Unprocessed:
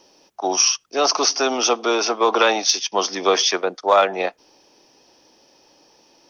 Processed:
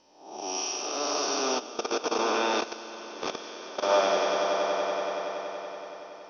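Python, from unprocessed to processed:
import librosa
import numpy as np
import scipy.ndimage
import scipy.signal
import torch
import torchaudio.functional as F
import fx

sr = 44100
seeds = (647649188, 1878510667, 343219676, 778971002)

y = fx.spec_blur(x, sr, span_ms=306.0)
y = fx.air_absorb(y, sr, metres=69.0)
y = fx.hum_notches(y, sr, base_hz=60, count=8)
y = fx.comb_fb(y, sr, f0_hz=300.0, decay_s=0.28, harmonics='all', damping=0.0, mix_pct=70)
y = fx.echo_swell(y, sr, ms=94, loudest=5, wet_db=-8.5)
y = fx.level_steps(y, sr, step_db=15, at=(1.58, 3.88), fade=0.02)
y = y * 10.0 ** (4.0 / 20.0)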